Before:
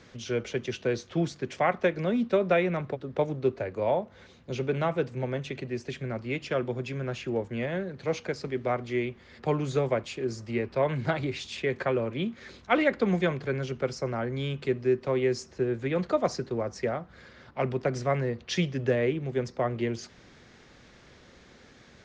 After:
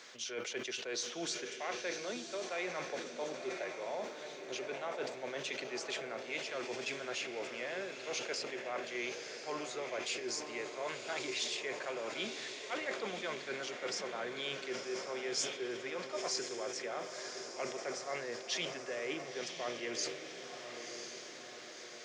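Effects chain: high-pass 550 Hz 12 dB/octave; reverse; compression, threshold -39 dBFS, peak gain reduction 18 dB; reverse; treble shelf 4 kHz +11 dB; echo that smears into a reverb 1024 ms, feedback 54%, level -6.5 dB; on a send at -17 dB: reverberation RT60 0.80 s, pre-delay 3 ms; on the sum: decay stretcher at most 75 dB/s

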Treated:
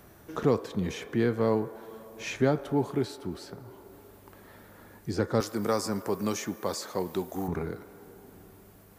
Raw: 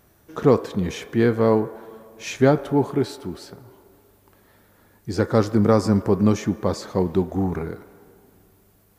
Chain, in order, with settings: 5.40–7.48 s: RIAA curve recording; three bands compressed up and down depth 40%; trim -6.5 dB

